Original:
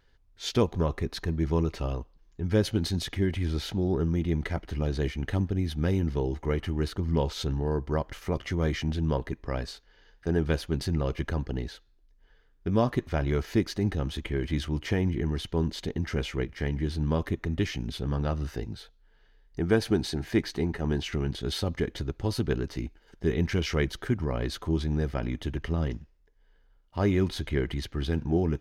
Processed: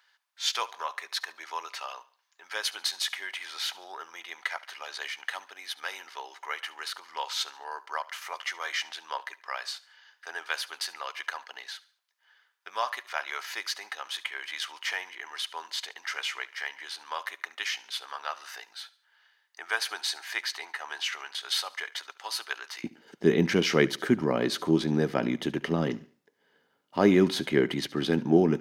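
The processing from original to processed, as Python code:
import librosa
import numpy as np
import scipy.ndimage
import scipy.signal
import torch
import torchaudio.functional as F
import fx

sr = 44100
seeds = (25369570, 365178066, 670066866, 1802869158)

y = fx.highpass(x, sr, hz=fx.steps((0.0, 920.0), (22.84, 180.0)), slope=24)
y = fx.echo_feedback(y, sr, ms=71, feedback_pct=38, wet_db=-20.0)
y = y * 10.0 ** (6.0 / 20.0)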